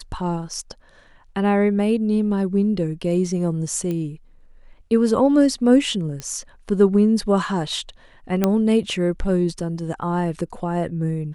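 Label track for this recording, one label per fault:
3.910000	3.910000	pop -16 dBFS
6.200000	6.200000	pop -16 dBFS
8.440000	8.440000	pop -5 dBFS

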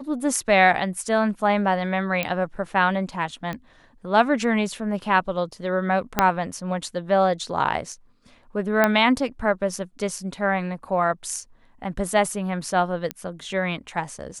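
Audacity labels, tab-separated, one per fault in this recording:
2.230000	2.230000	pop -9 dBFS
3.530000	3.530000	pop -18 dBFS
6.190000	6.190000	pop -2 dBFS
8.840000	8.840000	pop -5 dBFS
13.110000	13.110000	pop -12 dBFS

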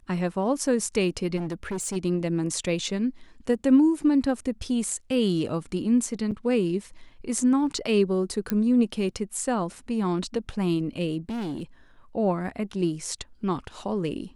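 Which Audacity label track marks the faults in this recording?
1.360000	1.970000	clipped -26.5 dBFS
6.310000	6.320000	gap 7 ms
8.500000	8.500000	pop -11 dBFS
11.290000	11.630000	clipped -28 dBFS

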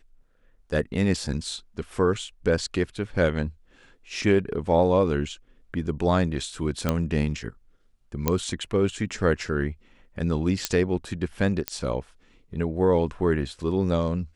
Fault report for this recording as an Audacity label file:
6.890000	6.890000	pop -9 dBFS
8.280000	8.280000	pop -6 dBFS
10.650000	10.650000	pop -6 dBFS
11.680000	11.680000	pop -8 dBFS

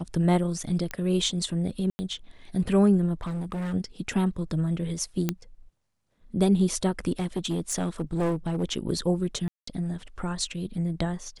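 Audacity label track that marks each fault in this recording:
0.910000	0.910000	pop -17 dBFS
1.900000	1.990000	gap 90 ms
3.210000	3.740000	clipped -28 dBFS
5.290000	5.290000	pop -11 dBFS
7.190000	8.640000	clipped -22.5 dBFS
9.480000	9.670000	gap 0.194 s

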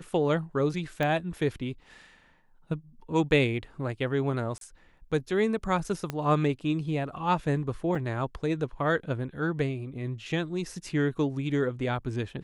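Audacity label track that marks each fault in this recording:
1.030000	1.030000	pop -17 dBFS
4.580000	4.610000	gap 32 ms
6.100000	6.100000	pop -17 dBFS
7.950000	7.950000	gap 3.5 ms

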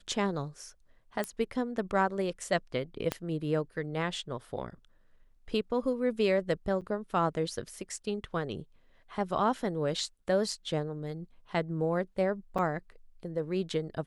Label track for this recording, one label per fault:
1.240000	1.240000	pop -18 dBFS
3.120000	3.120000	pop -15 dBFS
6.810000	6.820000	gap 7.2 ms
12.580000	12.590000	gap 5.5 ms

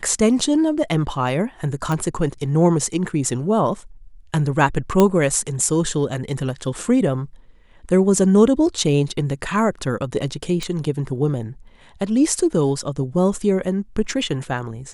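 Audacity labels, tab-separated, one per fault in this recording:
1.920000	1.920000	pop
5.000000	5.000000	pop -3 dBFS
10.630000	10.630000	pop -13 dBFS

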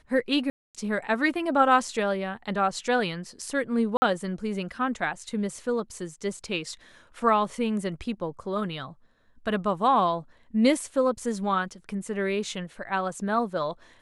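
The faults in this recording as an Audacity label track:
0.500000	0.750000	gap 0.247 s
3.970000	4.020000	gap 50 ms

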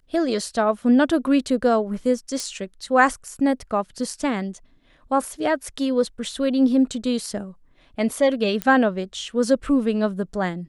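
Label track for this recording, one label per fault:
2.400000	2.400000	pop
8.620000	8.620000	pop -9 dBFS

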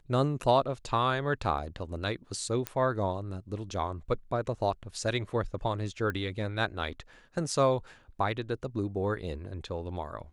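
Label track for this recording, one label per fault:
1.580000	1.580000	gap 2.1 ms
2.670000	2.670000	pop -15 dBFS
6.100000	6.100000	pop -21 dBFS

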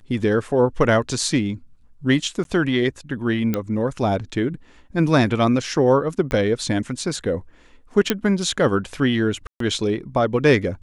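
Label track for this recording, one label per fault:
2.440000	2.450000	gap 12 ms
3.540000	3.540000	pop -9 dBFS
6.310000	6.310000	pop -12 dBFS
8.100000	8.100000	pop -3 dBFS
9.470000	9.600000	gap 0.133 s

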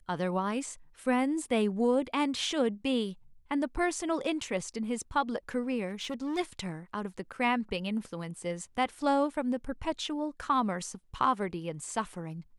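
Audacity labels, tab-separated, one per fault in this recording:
5.880000	6.390000	clipped -30.5 dBFS

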